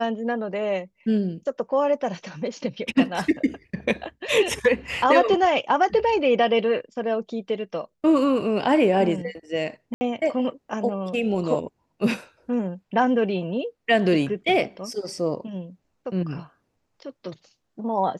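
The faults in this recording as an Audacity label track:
9.940000	10.010000	drop-out 70 ms

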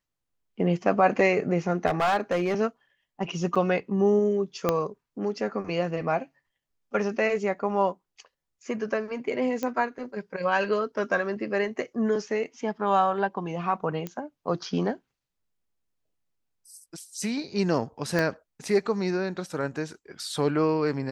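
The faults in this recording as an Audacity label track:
1.870000	2.540000	clipping −19.5 dBFS
3.550000	3.560000	drop-out 6.3 ms
4.690000	4.690000	click −9 dBFS
9.630000	9.630000	click −16 dBFS
14.070000	14.070000	click −19 dBFS
18.190000	18.190000	click −13 dBFS

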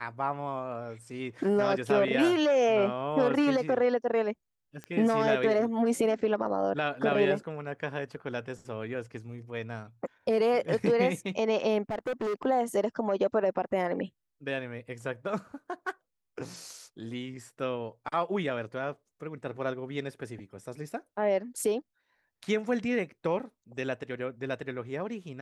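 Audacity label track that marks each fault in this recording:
4.840000	4.840000	click −26 dBFS
11.900000	12.460000	clipping −28 dBFS

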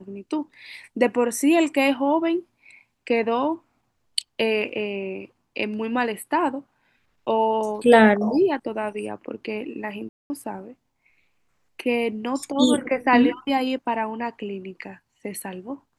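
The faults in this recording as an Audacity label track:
10.090000	10.300000	drop-out 210 ms

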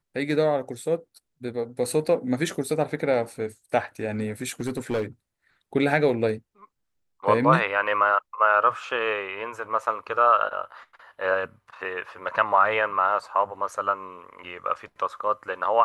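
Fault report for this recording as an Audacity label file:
4.420000	5.040000	clipping −21.5 dBFS

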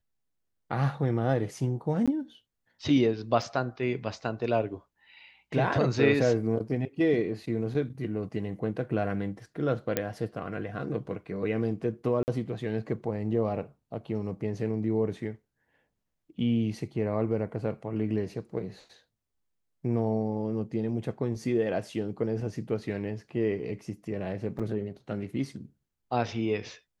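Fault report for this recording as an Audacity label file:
2.060000	2.080000	drop-out 16 ms
3.420000	3.420000	drop-out 2.2 ms
9.970000	9.970000	click −11 dBFS
12.230000	12.280000	drop-out 49 ms
24.590000	24.600000	drop-out 6 ms

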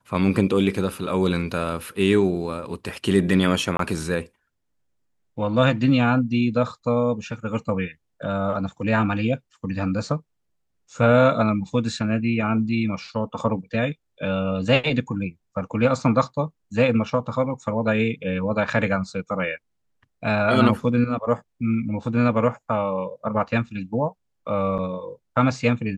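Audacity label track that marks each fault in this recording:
3.770000	3.790000	drop-out 23 ms
24.780000	24.790000	drop-out 7.5 ms

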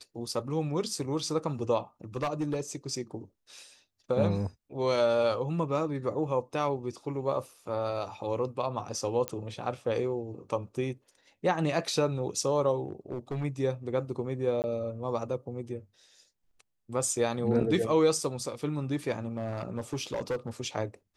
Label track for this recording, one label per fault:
2.160000	2.610000	clipping −25.5 dBFS
9.280000	9.280000	click −15 dBFS
12.860000	13.450000	clipping −29 dBFS
14.620000	14.640000	drop-out 19 ms
19.370000	20.490000	clipping −27 dBFS

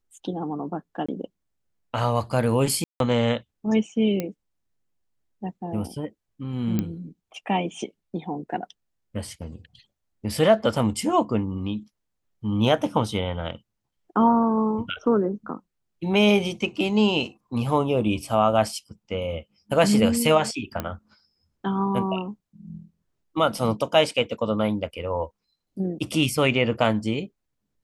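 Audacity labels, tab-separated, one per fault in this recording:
1.060000	1.080000	drop-out 25 ms
2.840000	3.000000	drop-out 162 ms
4.200000	4.200000	click −13 dBFS
6.790000	6.790000	click −12 dBFS
20.800000	20.800000	click −13 dBFS
23.580000	23.580000	drop-out 3.3 ms

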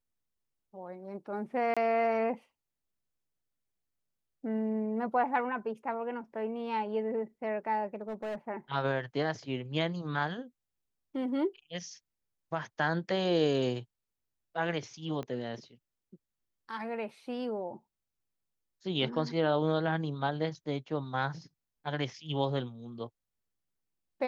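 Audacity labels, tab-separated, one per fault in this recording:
1.740000	1.770000	drop-out 26 ms
7.950000	8.360000	clipping −33 dBFS
15.230000	15.230000	click −26 dBFS

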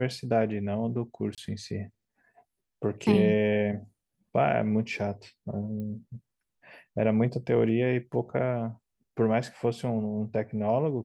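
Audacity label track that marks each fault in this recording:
1.350000	1.380000	drop-out 27 ms
5.800000	5.800000	click −28 dBFS

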